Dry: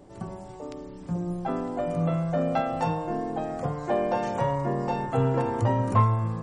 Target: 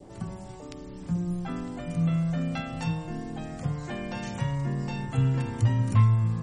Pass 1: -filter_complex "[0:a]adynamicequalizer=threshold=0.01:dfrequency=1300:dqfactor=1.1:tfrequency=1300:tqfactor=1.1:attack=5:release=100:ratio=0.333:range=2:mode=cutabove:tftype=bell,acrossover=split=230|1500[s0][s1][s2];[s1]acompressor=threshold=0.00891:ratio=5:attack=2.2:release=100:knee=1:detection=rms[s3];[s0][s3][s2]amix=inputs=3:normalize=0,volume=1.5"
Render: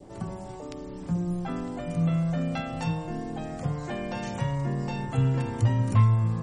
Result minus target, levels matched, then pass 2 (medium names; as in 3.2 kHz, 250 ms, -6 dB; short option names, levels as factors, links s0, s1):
compression: peak gain reduction -5.5 dB
-filter_complex "[0:a]adynamicequalizer=threshold=0.01:dfrequency=1300:dqfactor=1.1:tfrequency=1300:tqfactor=1.1:attack=5:release=100:ratio=0.333:range=2:mode=cutabove:tftype=bell,acrossover=split=230|1500[s0][s1][s2];[s1]acompressor=threshold=0.00398:ratio=5:attack=2.2:release=100:knee=1:detection=rms[s3];[s0][s3][s2]amix=inputs=3:normalize=0,volume=1.5"